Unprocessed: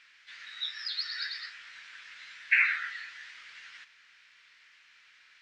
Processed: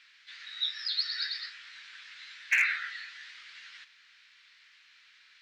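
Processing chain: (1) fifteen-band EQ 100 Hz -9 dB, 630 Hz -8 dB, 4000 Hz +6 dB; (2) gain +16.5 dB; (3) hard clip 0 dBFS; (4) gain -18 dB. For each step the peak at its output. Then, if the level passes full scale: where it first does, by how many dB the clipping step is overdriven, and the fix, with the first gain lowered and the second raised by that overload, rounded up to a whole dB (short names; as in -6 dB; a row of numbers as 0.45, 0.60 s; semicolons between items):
-10.5, +6.0, 0.0, -18.0 dBFS; step 2, 6.0 dB; step 2 +10.5 dB, step 4 -12 dB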